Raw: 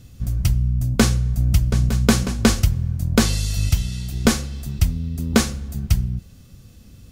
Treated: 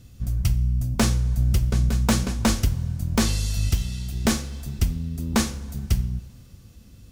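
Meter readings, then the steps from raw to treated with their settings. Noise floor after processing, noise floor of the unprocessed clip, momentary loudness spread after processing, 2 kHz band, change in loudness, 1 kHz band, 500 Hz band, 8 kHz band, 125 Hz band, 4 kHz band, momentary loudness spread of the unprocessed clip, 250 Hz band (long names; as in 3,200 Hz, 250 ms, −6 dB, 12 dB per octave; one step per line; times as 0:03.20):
−48 dBFS, −46 dBFS, 8 LU, −5.0 dB, −3.5 dB, −2.5 dB, −6.0 dB, −3.5 dB, −3.5 dB, −4.0 dB, 8 LU, −4.5 dB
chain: wave folding −8.5 dBFS
coupled-rooms reverb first 0.48 s, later 3 s, from −16 dB, DRR 12 dB
level −3.5 dB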